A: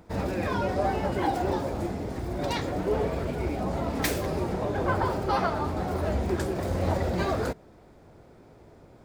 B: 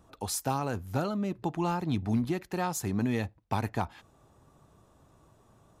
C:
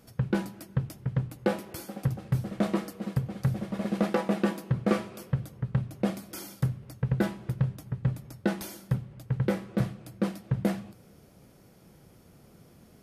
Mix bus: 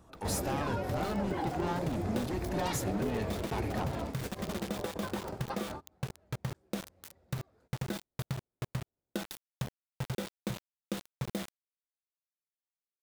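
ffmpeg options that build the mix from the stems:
-filter_complex "[0:a]adelay=150,volume=1[s0];[1:a]bandreject=f=50:t=h:w=6,bandreject=f=100:t=h:w=6,bandreject=f=150:t=h:w=6,asoftclip=type=tanh:threshold=0.0224,aeval=exprs='val(0)+0.000355*(sin(2*PI*50*n/s)+sin(2*PI*2*50*n/s)/2+sin(2*PI*3*50*n/s)/3+sin(2*PI*4*50*n/s)/4+sin(2*PI*5*50*n/s)/5)':c=same,volume=1.12,asplit=2[s1][s2];[2:a]equalizer=f=3600:t=o:w=0.27:g=14,acrusher=bits=4:mix=0:aa=0.000001,adelay=700,volume=0.596[s3];[s2]apad=whole_len=405421[s4];[s0][s4]sidechaingate=range=0.01:threshold=0.00141:ratio=16:detection=peak[s5];[s5][s3]amix=inputs=2:normalize=0,acompressor=threshold=0.0251:ratio=6,volume=1[s6];[s1][s6]amix=inputs=2:normalize=0"

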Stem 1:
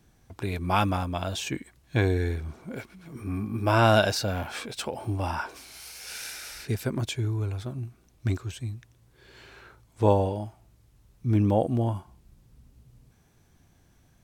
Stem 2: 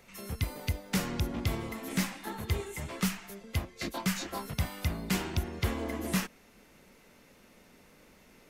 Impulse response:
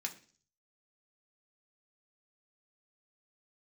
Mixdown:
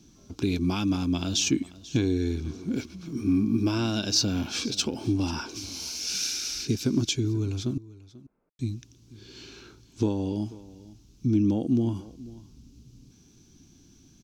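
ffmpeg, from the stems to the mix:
-filter_complex "[0:a]acompressor=threshold=0.0447:ratio=5,firequalizer=gain_entry='entry(100,0);entry(280,12);entry(560,-9);entry(2400,3);entry(6000,13);entry(8600,-4)':delay=0.05:min_phase=1,volume=1.19,asplit=3[s0][s1][s2];[s0]atrim=end=7.78,asetpts=PTS-STARTPTS,afade=t=out:st=7.776:d=0.004:c=hsin[s3];[s1]atrim=start=7.78:end=8.59,asetpts=PTS-STARTPTS,volume=0[s4];[s2]atrim=start=8.59,asetpts=PTS-STARTPTS,afade=t=in:d=0.004:c=hsin[s5];[s3][s4][s5]concat=n=3:v=0:a=1,asplit=3[s6][s7][s8];[s7]volume=0.106[s9];[1:a]lowpass=f=1700:w=0.5412,lowpass=f=1700:w=1.3066,volume=0.178[s10];[s8]apad=whole_len=374614[s11];[s10][s11]sidechaincompress=threshold=0.0178:ratio=8:attack=16:release=694[s12];[s9]aecho=0:1:489:1[s13];[s6][s12][s13]amix=inputs=3:normalize=0,equalizer=f=1900:t=o:w=0.34:g=-10.5"

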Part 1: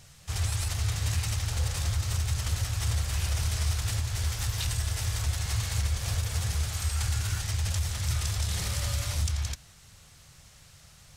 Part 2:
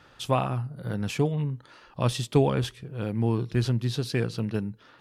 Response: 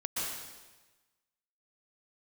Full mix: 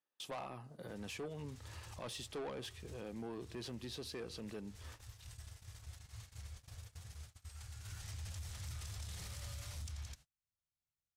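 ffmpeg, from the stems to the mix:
-filter_complex "[0:a]adelay=600,volume=0.335,afade=t=in:st=7.8:d=0.45:silence=0.237137[s0];[1:a]highpass=280,bandreject=f=1400:w=6.1,volume=0.794,asplit=2[s1][s2];[s2]apad=whole_len=518935[s3];[s0][s3]sidechaincompress=threshold=0.0251:ratio=8:attack=16:release=206[s4];[s4][s1]amix=inputs=2:normalize=0,agate=range=0.0141:threshold=0.00282:ratio=16:detection=peak,asoftclip=type=tanh:threshold=0.0376,alimiter=level_in=5.31:limit=0.0631:level=0:latency=1:release=327,volume=0.188"

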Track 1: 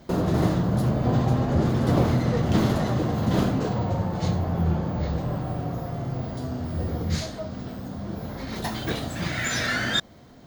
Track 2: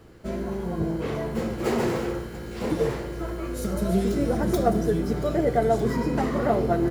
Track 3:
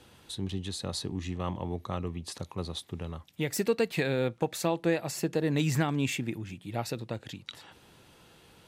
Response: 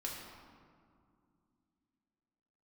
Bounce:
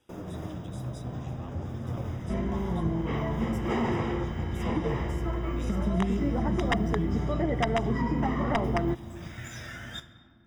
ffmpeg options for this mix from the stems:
-filter_complex "[0:a]asubboost=boost=3:cutoff=150,flanger=delay=8:depth=8.9:regen=71:speed=0.53:shape=triangular,aeval=exprs='sgn(val(0))*max(abs(val(0))-0.0075,0)':c=same,volume=0.237,asplit=2[s0][s1];[s1]volume=0.447[s2];[1:a]aeval=exprs='(mod(3.98*val(0)+1,2)-1)/3.98':c=same,lowpass=3800,aecho=1:1:1:0.51,adelay=2050,volume=1.33,asplit=2[s3][s4];[s4]volume=0.106[s5];[2:a]volume=0.15,asplit=2[s6][s7];[s7]volume=0.473[s8];[3:a]atrim=start_sample=2205[s9];[s2][s5][s8]amix=inputs=3:normalize=0[s10];[s10][s9]afir=irnorm=-1:irlink=0[s11];[s0][s3][s6][s11]amix=inputs=4:normalize=0,asuperstop=centerf=4300:order=20:qfactor=4.9,acompressor=threshold=0.0355:ratio=2"

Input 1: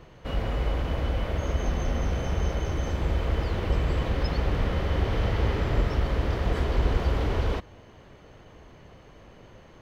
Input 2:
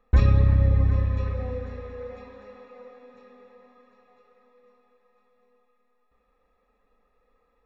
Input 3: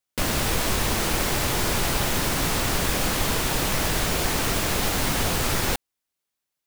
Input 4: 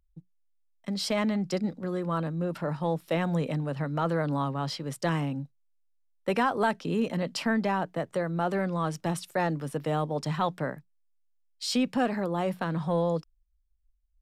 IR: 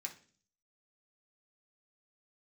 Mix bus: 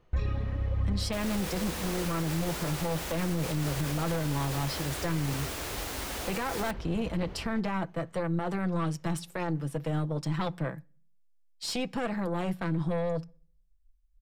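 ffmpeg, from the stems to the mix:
-filter_complex "[0:a]volume=0.141[s0];[1:a]aphaser=in_gain=1:out_gain=1:delay=4.6:decay=0.5:speed=1.1:type=triangular,volume=0.266,asplit=2[s1][s2];[s2]volume=0.447[s3];[2:a]highpass=f=240:w=0.5412,highpass=f=240:w=1.3066,adelay=950,volume=0.266[s4];[3:a]lowshelf=f=150:g=8.5,aecho=1:1:6:0.52,aeval=exprs='0.299*(cos(1*acos(clip(val(0)/0.299,-1,1)))-cos(1*PI/2))+0.0531*(cos(4*acos(clip(val(0)/0.299,-1,1)))-cos(4*PI/2))':c=same,volume=0.596,asplit=2[s5][s6];[s6]volume=0.237[s7];[4:a]atrim=start_sample=2205[s8];[s3][s7]amix=inputs=2:normalize=0[s9];[s9][s8]afir=irnorm=-1:irlink=0[s10];[s0][s1][s4][s5][s10]amix=inputs=5:normalize=0,alimiter=limit=0.0891:level=0:latency=1:release=34"

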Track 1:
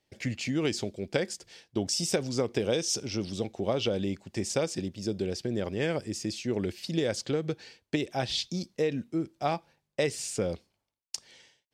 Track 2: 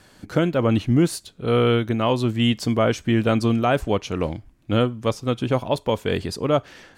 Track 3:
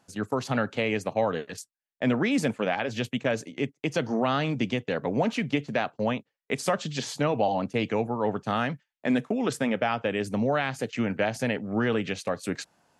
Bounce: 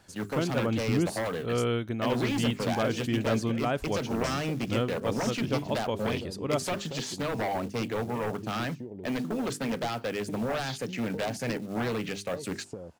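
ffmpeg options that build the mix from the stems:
-filter_complex "[0:a]afwtdn=0.0178,acompressor=threshold=0.0158:ratio=12,adelay=2350,volume=0.891[s0];[1:a]volume=0.335[s1];[2:a]bandreject=f=50:t=h:w=6,bandreject=f=100:t=h:w=6,bandreject=f=150:t=h:w=6,bandreject=f=200:t=h:w=6,bandreject=f=250:t=h:w=6,bandreject=f=300:t=h:w=6,bandreject=f=350:t=h:w=6,bandreject=f=400:t=h:w=6,aeval=exprs='0.266*sin(PI/2*3.16*val(0)/0.266)':c=same,acrusher=bits=5:mode=log:mix=0:aa=0.000001,volume=0.188[s2];[s0][s1][s2]amix=inputs=3:normalize=0"

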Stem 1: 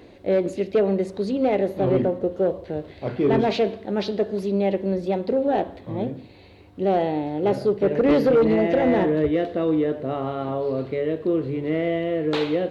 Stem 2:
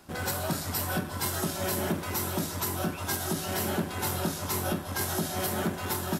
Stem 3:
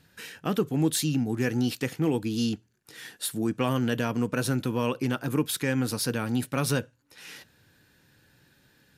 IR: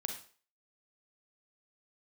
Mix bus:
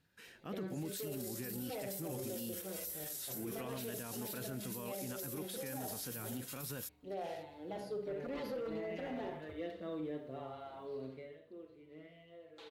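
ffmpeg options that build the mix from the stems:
-filter_complex "[0:a]equalizer=f=230:t=o:w=2.2:g=-3.5,asplit=2[s0][s1];[s1]adelay=5.3,afreqshift=-0.99[s2];[s0][s2]amix=inputs=2:normalize=1,adelay=250,volume=0.316,afade=t=out:st=11.01:d=0.39:silence=0.281838,asplit=2[s3][s4];[s4]volume=0.531[s5];[1:a]highpass=1500,adelay=700,volume=0.891[s6];[2:a]bass=f=250:g=-1,treble=f=4000:g=-3,volume=0.2,asplit=2[s7][s8];[s8]apad=whole_len=303919[s9];[s6][s9]sidechaincompress=threshold=0.00794:ratio=8:attack=16:release=228[s10];[s3][s10]amix=inputs=2:normalize=0,aderivative,acompressor=threshold=0.01:ratio=6,volume=1[s11];[3:a]atrim=start_sample=2205[s12];[s5][s12]afir=irnorm=-1:irlink=0[s13];[s7][s11][s13]amix=inputs=3:normalize=0,alimiter=level_in=2.99:limit=0.0631:level=0:latency=1:release=16,volume=0.335"

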